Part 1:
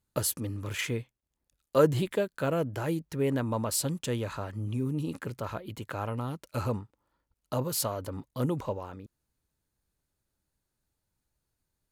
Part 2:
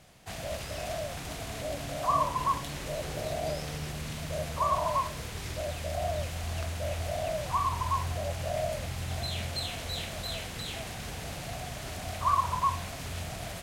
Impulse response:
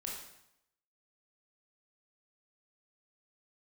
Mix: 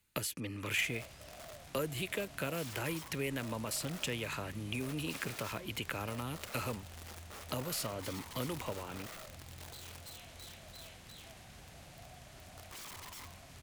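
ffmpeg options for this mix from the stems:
-filter_complex "[0:a]highshelf=frequency=5800:gain=8.5,acrossover=split=140|420|7300[link_01][link_02][link_03][link_04];[link_01]acompressor=threshold=-52dB:ratio=4[link_05];[link_02]acompressor=threshold=-43dB:ratio=4[link_06];[link_03]acompressor=threshold=-45dB:ratio=4[link_07];[link_04]acompressor=threshold=-47dB:ratio=4[link_08];[link_05][link_06][link_07][link_08]amix=inputs=4:normalize=0,equalizer=frequency=2400:width_type=o:width=1.1:gain=14,volume=0.5dB[link_09];[1:a]bandreject=frequency=450:width=12,aeval=exprs='(mod(25.1*val(0)+1,2)-1)/25.1':channel_layout=same,adelay=500,volume=-15dB[link_10];[link_09][link_10]amix=inputs=2:normalize=0"

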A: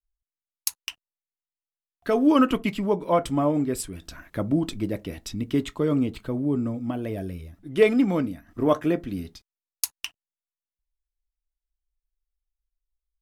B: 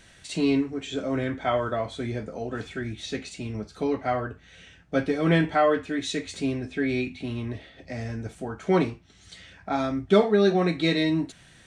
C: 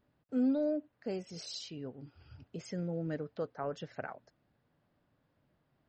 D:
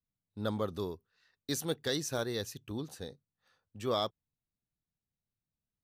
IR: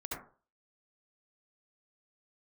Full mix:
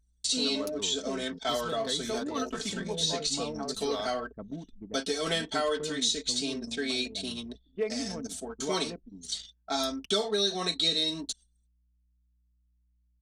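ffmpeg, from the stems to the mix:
-filter_complex "[0:a]aeval=exprs='val(0)+0.00562*(sin(2*PI*60*n/s)+sin(2*PI*2*60*n/s)/2+sin(2*PI*3*60*n/s)/3+sin(2*PI*4*60*n/s)/4+sin(2*PI*5*60*n/s)/5)':channel_layout=same,volume=-14.5dB[link_01];[1:a]aexciter=amount=12.5:drive=3.3:freq=3400,equalizer=frequency=140:width_type=o:width=1:gain=-12.5,agate=range=-8dB:threshold=-37dB:ratio=16:detection=peak,volume=-5dB[link_02];[2:a]volume=-2dB[link_03];[3:a]volume=-4.5dB[link_04];[link_01][link_02][link_03][link_04]amix=inputs=4:normalize=0,anlmdn=1,aecho=1:1:4.5:0.58,acrossover=split=420|5800[link_05][link_06][link_07];[link_05]acompressor=threshold=-35dB:ratio=4[link_08];[link_06]acompressor=threshold=-27dB:ratio=4[link_09];[link_07]acompressor=threshold=-43dB:ratio=4[link_10];[link_08][link_09][link_10]amix=inputs=3:normalize=0"

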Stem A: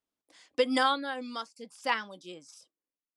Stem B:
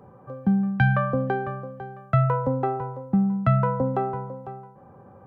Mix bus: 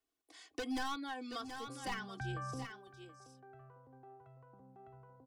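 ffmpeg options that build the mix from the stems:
ffmpeg -i stem1.wav -i stem2.wav -filter_complex "[0:a]volume=27dB,asoftclip=hard,volume=-27dB,volume=-1.5dB,asplit=3[link_01][link_02][link_03];[link_02]volume=-13dB[link_04];[1:a]alimiter=limit=-20dB:level=0:latency=1:release=18,adelay=1400,volume=-11.5dB,asplit=2[link_05][link_06];[link_06]volume=-21.5dB[link_07];[link_03]apad=whole_len=293926[link_08];[link_05][link_08]sidechaingate=range=-21dB:threshold=-57dB:ratio=16:detection=peak[link_09];[link_04][link_07]amix=inputs=2:normalize=0,aecho=0:1:727:1[link_10];[link_01][link_09][link_10]amix=inputs=3:normalize=0,aecho=1:1:2.7:0.8,acrossover=split=180[link_11][link_12];[link_12]acompressor=threshold=-45dB:ratio=2[link_13];[link_11][link_13]amix=inputs=2:normalize=0" out.wav

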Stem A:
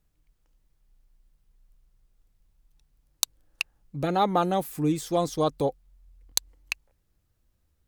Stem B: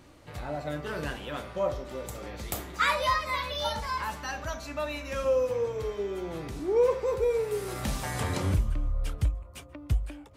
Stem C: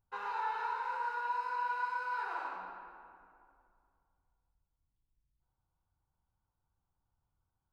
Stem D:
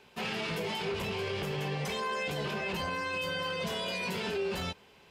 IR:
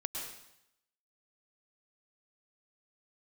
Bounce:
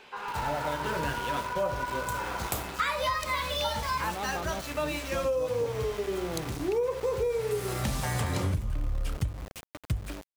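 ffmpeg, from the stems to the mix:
-filter_complex "[0:a]volume=-13.5dB[link_01];[1:a]bandreject=frequency=50:width_type=h:width=6,bandreject=frequency=100:width_type=h:width=6,bandreject=frequency=150:width_type=h:width=6,bandreject=frequency=200:width_type=h:width=6,bandreject=frequency=250:width_type=h:width=6,bandreject=frequency=300:width_type=h:width=6,bandreject=frequency=350:width_type=h:width=6,bandreject=frequency=400:width_type=h:width=6,bandreject=frequency=450:width_type=h:width=6,adynamicequalizer=threshold=0.00562:dfrequency=120:dqfactor=1.5:tfrequency=120:tqfactor=1.5:attack=5:release=100:ratio=0.375:range=2.5:mode=boostabove:tftype=bell,aeval=exprs='val(0)*gte(abs(val(0)),0.0119)':channel_layout=same,volume=3dB[link_02];[2:a]volume=2.5dB[link_03];[3:a]asplit=2[link_04][link_05];[link_05]highpass=frequency=720:poles=1,volume=36dB,asoftclip=type=tanh:threshold=-23.5dB[link_06];[link_04][link_06]amix=inputs=2:normalize=0,lowpass=frequency=3200:poles=1,volume=-6dB,volume=-17dB[link_07];[link_01][link_02][link_03][link_07]amix=inputs=4:normalize=0,acompressor=threshold=-25dB:ratio=10"

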